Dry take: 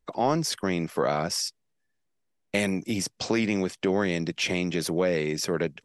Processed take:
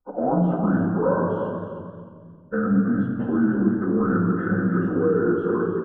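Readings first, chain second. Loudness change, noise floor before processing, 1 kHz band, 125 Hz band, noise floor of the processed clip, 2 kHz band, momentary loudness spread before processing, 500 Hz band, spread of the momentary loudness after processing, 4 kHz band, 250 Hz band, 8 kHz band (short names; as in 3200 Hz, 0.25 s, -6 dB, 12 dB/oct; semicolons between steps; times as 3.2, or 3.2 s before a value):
+5.0 dB, -75 dBFS, +3.0 dB, +7.5 dB, -45 dBFS, -0.5 dB, 4 LU, +4.0 dB, 9 LU, under -30 dB, +8.0 dB, under -40 dB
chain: inharmonic rescaling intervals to 83%; spectral noise reduction 8 dB; dynamic EQ 810 Hz, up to -6 dB, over -42 dBFS, Q 0.78; in parallel at +2 dB: negative-ratio compressor -33 dBFS, ratio -0.5; on the sum: sample leveller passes 1; elliptic low-pass 1400 Hz, stop band 40 dB; on a send: feedback echo 0.309 s, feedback 23%, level -10 dB; on the sum: shoebox room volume 2600 m³, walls mixed, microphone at 2 m; warbling echo 0.222 s, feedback 33%, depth 130 cents, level -13 dB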